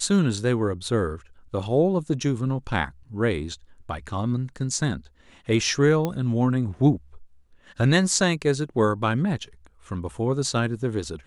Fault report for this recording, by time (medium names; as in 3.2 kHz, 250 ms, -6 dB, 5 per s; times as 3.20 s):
6.05 s: pop -13 dBFS